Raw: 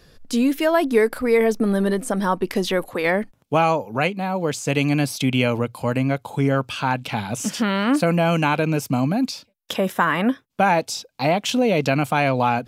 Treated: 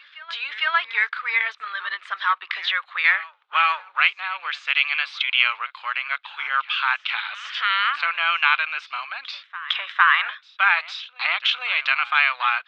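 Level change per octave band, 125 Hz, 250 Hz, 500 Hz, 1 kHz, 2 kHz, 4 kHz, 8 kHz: below −40 dB, below −40 dB, −26.0 dB, −1.0 dB, +7.0 dB, +6.0 dB, below −20 dB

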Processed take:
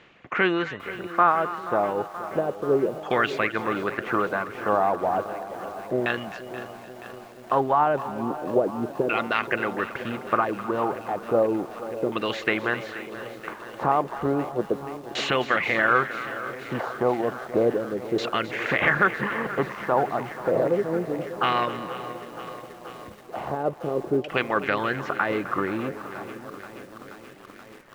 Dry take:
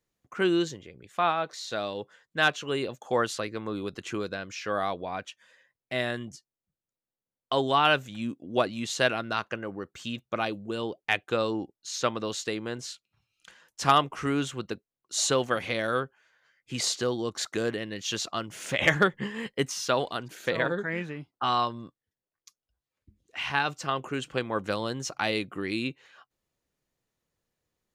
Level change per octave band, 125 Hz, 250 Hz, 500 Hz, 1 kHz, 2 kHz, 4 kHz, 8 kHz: +1.5, +3.5, +5.5, +5.0, +4.0, −4.0, −14.0 decibels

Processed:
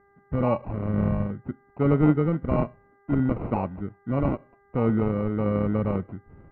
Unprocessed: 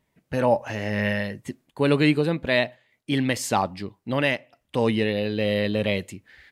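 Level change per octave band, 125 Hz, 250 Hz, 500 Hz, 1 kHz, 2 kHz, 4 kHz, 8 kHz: +3.5 dB, +1.0 dB, −4.0 dB, −3.5 dB, −15.5 dB, below −25 dB, below −40 dB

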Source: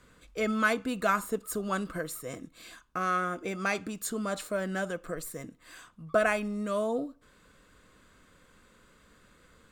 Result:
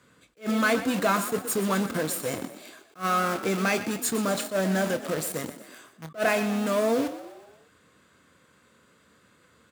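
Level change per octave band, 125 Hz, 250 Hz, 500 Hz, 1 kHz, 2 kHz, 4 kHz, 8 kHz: +7.0, +6.5, +4.5, +3.5, +2.5, +8.5, +8.0 decibels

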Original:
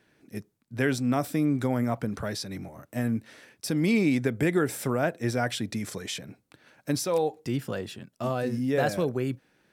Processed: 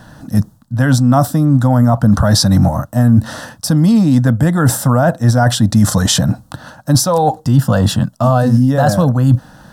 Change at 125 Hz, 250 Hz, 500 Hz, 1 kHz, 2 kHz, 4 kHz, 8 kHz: +21.5, +15.0, +10.5, +16.5, +9.0, +16.5, +18.0 decibels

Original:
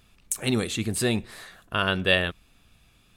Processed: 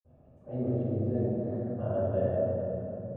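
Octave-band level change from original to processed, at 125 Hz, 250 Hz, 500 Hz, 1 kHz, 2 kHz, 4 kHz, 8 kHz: 0.0 dB, −3.0 dB, +0.5 dB, −10.5 dB, below −25 dB, below −40 dB, below −40 dB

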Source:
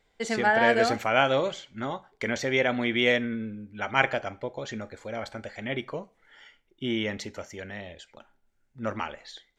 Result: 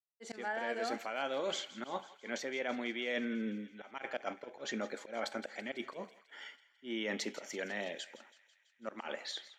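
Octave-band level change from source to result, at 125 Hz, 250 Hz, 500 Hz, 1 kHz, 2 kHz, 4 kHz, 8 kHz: −18.5, −9.5, −11.5, −13.0, −13.0, −8.5, −5.0 decibels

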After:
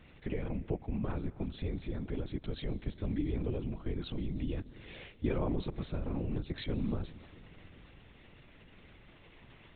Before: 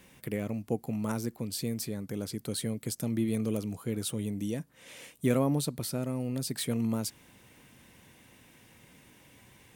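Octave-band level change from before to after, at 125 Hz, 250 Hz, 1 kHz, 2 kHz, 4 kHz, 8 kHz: −2.5 dB, −5.5 dB, −5.5 dB, −4.5 dB, −9.0 dB, below −40 dB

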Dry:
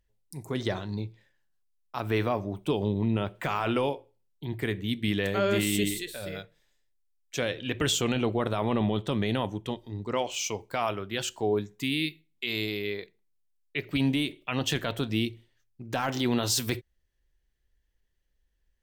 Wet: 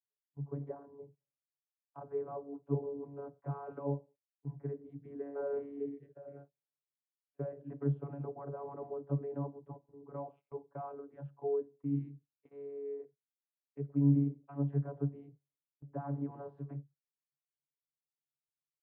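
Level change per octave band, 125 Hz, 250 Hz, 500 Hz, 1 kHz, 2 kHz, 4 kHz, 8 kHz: −4.5 dB, −9.0 dB, −9.0 dB, −15.0 dB, below −30 dB, below −40 dB, below −40 dB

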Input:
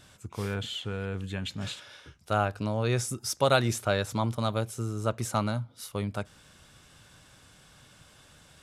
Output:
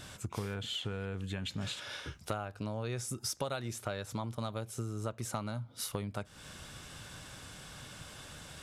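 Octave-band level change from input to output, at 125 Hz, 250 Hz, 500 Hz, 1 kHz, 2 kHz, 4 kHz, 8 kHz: −7.5, −7.5, −10.0, −10.5, −9.0, −4.5, −4.0 decibels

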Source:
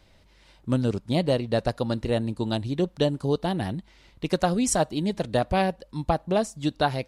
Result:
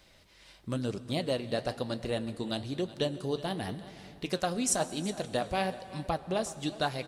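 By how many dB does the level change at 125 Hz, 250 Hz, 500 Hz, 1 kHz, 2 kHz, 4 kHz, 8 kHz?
−9.5, −8.5, −7.0, −7.0, −4.5, −3.0, −2.0 decibels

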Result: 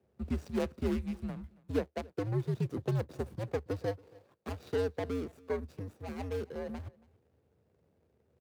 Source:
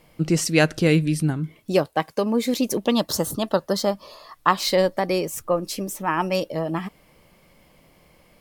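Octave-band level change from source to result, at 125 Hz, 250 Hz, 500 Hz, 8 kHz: −9.5, −14.0, −13.0, −28.0 decibels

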